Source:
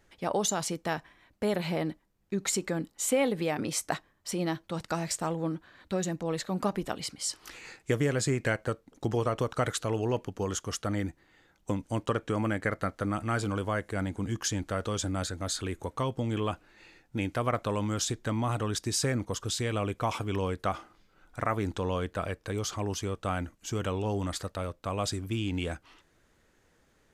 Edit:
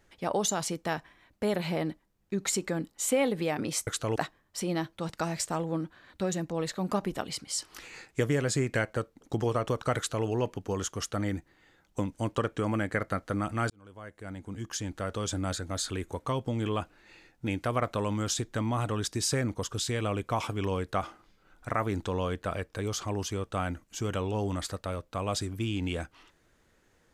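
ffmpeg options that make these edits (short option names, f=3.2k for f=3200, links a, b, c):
-filter_complex "[0:a]asplit=4[a][b][c][d];[a]atrim=end=3.872[e];[b]atrim=start=9.678:end=9.972[f];[c]atrim=start=3.868:end=13.41,asetpts=PTS-STARTPTS,afade=t=out:st=9.538:d=0.004:c=hsin[g];[d]atrim=start=13.41,asetpts=PTS-STARTPTS,afade=t=in:d=1.73[h];[e][f]acrossfade=d=0.004:c1=hsin:c2=hsin[i];[g][h]concat=n=2:v=0:a=1[j];[i][j]acrossfade=d=0.004:c1=hsin:c2=hsin"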